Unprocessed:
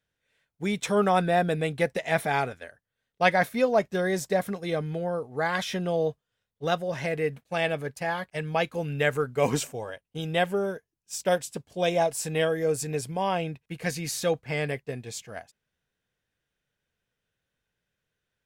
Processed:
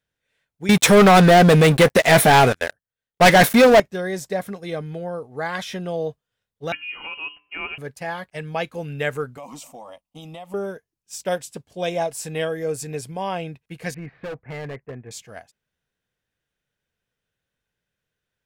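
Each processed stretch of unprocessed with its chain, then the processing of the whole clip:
0.69–3.80 s: treble shelf 11 kHz +6.5 dB + waveshaping leveller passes 5
6.72–7.78 s: frequency inversion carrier 3 kHz + feedback comb 60 Hz, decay 0.51 s, harmonics odd, mix 50%
9.37–10.54 s: peaking EQ 1.2 kHz +10 dB 1.1 oct + static phaser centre 420 Hz, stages 6 + compression, threshold -35 dBFS
13.94–15.11 s: block-companded coder 7-bit + steep low-pass 2.1 kHz + overload inside the chain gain 29 dB
whole clip: none

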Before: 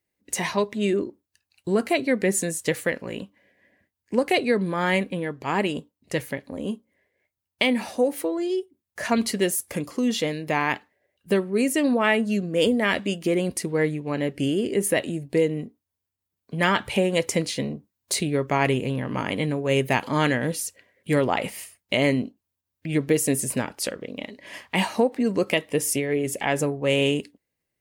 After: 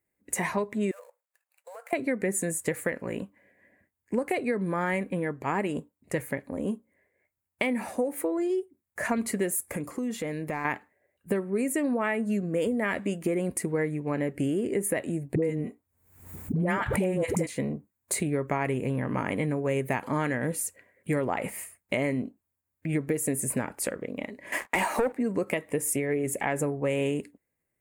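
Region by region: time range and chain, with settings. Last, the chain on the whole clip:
0.91–1.93 s: dead-time distortion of 0.059 ms + brick-wall FIR high-pass 460 Hz + compression, threshold -41 dBFS
9.71–10.65 s: compression 4:1, threshold -28 dBFS + hard clipper -22.5 dBFS
15.35–17.47 s: bass shelf 470 Hz +6 dB + phase dispersion highs, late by 76 ms, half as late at 500 Hz + swell ahead of each attack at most 84 dB/s
24.52–25.13 s: high-pass 260 Hz 24 dB/octave + waveshaping leveller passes 3
whole clip: high-order bell 4.1 kHz -12 dB 1.3 oct; compression, threshold -24 dBFS

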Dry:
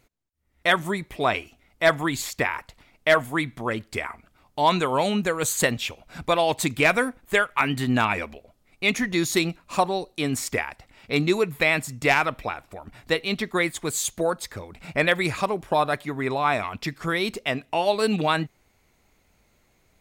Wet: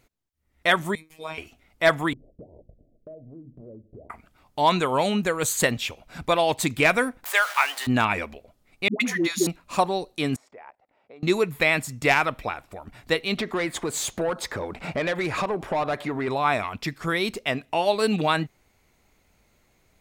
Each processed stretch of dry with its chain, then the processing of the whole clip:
0.95–1.38 s: treble shelf 4.9 kHz +9 dB + inharmonic resonator 110 Hz, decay 0.3 s, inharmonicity 0.002 + robot voice 158 Hz
2.13–4.10 s: steep low-pass 640 Hz 72 dB/octave + compression 8:1, threshold -40 dBFS + hum notches 50/100/150/200/250/300/350 Hz
7.24–7.87 s: jump at every zero crossing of -27.5 dBFS + high-pass 670 Hz 24 dB/octave
8.88–9.47 s: high-pass 190 Hz 24 dB/octave + phase dispersion highs, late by 122 ms, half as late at 500 Hz
10.36–11.23 s: level held to a coarse grid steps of 19 dB + band-pass filter 640 Hz, Q 1.6
13.37–16.28 s: tilt shelf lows +6.5 dB, about 1.2 kHz + compression 3:1, threshold -28 dBFS + overdrive pedal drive 17 dB, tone 5.7 kHz, clips at -16.5 dBFS
whole clip: none

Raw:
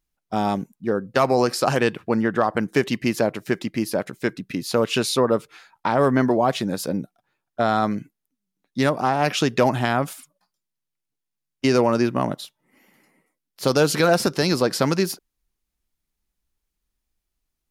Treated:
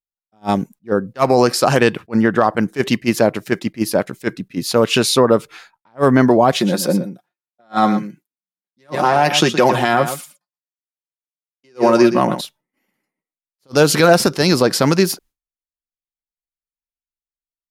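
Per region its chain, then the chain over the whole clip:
6.52–12.41 s: high-pass 170 Hz + comb 5.6 ms, depth 56% + delay 119 ms -12 dB
whole clip: expander -45 dBFS; loudness maximiser +8.5 dB; attacks held to a fixed rise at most 450 dB/s; trim -1 dB

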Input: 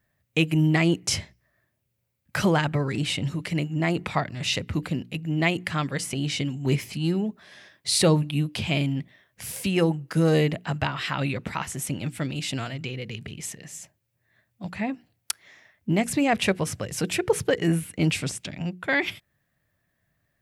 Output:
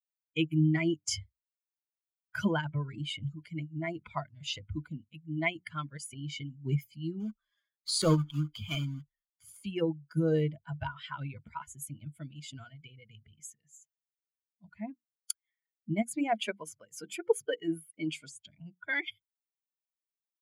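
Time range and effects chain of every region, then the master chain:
7.20–9.66 s: block-companded coder 3-bit + low-pass 9.8 kHz + peaking EQ 1.2 kHz +9 dB 0.23 oct
16.13–18.33 s: high-pass 190 Hz + hum notches 50/100/150/200/250/300/350 Hz
whole clip: expander on every frequency bin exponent 2; rippled EQ curve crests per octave 1.8, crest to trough 9 dB; trim -5 dB

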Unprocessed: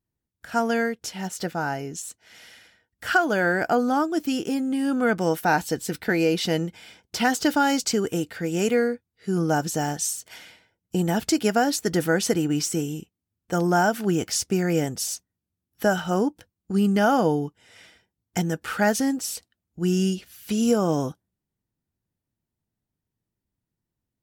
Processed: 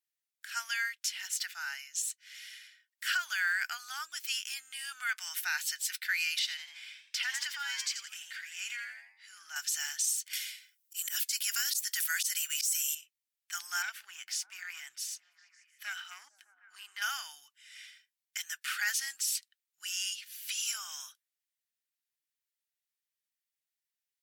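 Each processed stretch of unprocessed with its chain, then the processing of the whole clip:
6.39–9.56 s: low-pass 4 kHz 6 dB/octave + frequency-shifting echo 85 ms, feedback 32%, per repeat +110 Hz, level -8.5 dB + compression 1.5:1, threshold -30 dBFS
10.33–12.95 s: RIAA curve recording + slow attack 126 ms
13.82–17.02 s: treble shelf 2.7 kHz -11.5 dB + valve stage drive 15 dB, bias 0.4 + repeats whose band climbs or falls 152 ms, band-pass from 200 Hz, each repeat 0.7 oct, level -8 dB
whole clip: inverse Chebyshev high-pass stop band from 530 Hz, stop band 60 dB; peak limiter -22.5 dBFS; trim +1.5 dB

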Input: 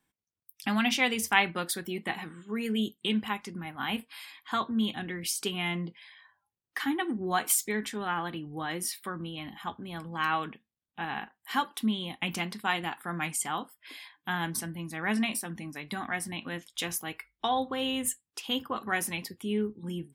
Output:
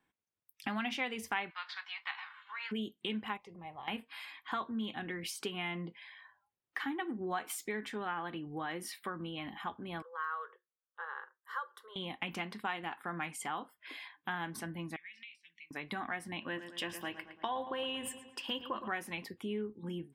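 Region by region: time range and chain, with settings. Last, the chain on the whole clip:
1.49–2.71 s: formants flattened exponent 0.6 + elliptic band-pass 980–4700 Hz, stop band 50 dB
3.37–3.88 s: low-pass 2.7 kHz 6 dB/octave + compression 5:1, threshold -37 dBFS + static phaser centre 620 Hz, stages 4
10.02–11.96 s: rippled Chebyshev high-pass 350 Hz, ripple 9 dB + static phaser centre 490 Hz, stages 8
14.96–15.71 s: elliptic high-pass 2.2 kHz + compression 10:1, threshold -43 dBFS + distance through air 160 m
16.40–18.88 s: rippled EQ curve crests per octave 1.3, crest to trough 8 dB + filtered feedback delay 113 ms, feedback 52%, low-pass 3.6 kHz, level -12 dB
whole clip: tone controls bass -6 dB, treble -13 dB; compression 2.5:1, threshold -39 dBFS; trim +1.5 dB

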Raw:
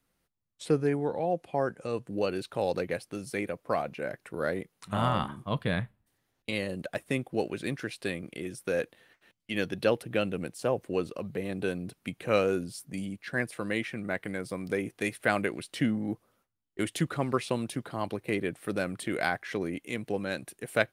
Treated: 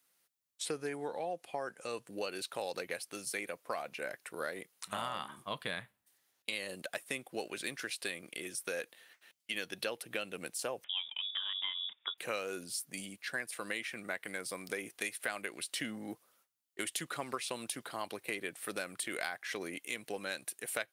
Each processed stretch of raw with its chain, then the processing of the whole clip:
10.84–12.18 s: peaking EQ 340 Hz -6.5 dB 1.3 oct + frequency inversion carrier 3.6 kHz
whole clip: high-pass 880 Hz 6 dB/octave; treble shelf 3.9 kHz +8.5 dB; compression 5:1, threshold -34 dBFS

